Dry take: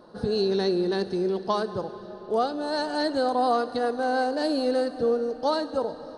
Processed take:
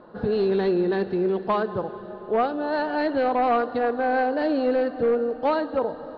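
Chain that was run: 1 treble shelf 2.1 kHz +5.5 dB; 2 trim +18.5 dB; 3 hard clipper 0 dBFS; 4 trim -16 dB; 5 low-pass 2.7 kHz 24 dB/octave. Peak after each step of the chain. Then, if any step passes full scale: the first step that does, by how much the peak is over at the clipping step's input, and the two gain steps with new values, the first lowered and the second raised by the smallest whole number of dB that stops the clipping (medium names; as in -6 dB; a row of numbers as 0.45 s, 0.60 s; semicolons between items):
-12.0 dBFS, +6.5 dBFS, 0.0 dBFS, -16.0 dBFS, -14.5 dBFS; step 2, 6.5 dB; step 2 +11.5 dB, step 4 -9 dB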